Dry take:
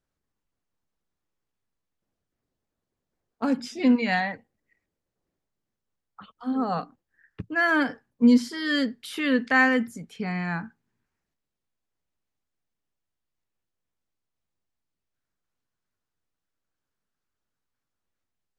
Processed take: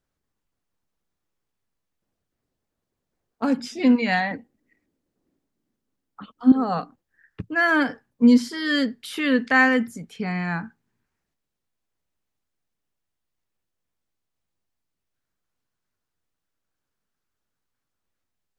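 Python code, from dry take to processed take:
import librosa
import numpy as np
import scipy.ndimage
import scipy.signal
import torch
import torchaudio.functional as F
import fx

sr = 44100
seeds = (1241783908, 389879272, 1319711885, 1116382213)

y = fx.peak_eq(x, sr, hz=270.0, db=13.0, octaves=0.95, at=(4.31, 6.52))
y = F.gain(torch.from_numpy(y), 2.5).numpy()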